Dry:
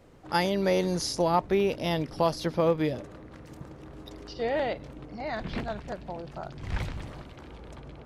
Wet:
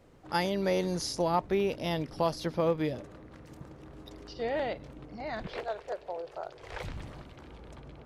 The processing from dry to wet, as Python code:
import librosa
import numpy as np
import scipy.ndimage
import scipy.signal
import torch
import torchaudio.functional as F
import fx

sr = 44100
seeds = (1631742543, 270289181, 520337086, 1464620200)

y = fx.low_shelf_res(x, sr, hz=320.0, db=-12.5, q=3.0, at=(5.47, 6.84))
y = F.gain(torch.from_numpy(y), -3.5).numpy()